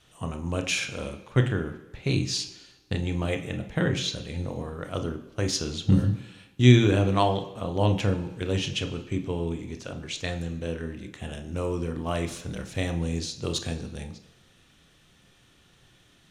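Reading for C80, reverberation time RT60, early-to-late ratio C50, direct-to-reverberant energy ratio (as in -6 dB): 13.5 dB, 1.1 s, 10.5 dB, 6.0 dB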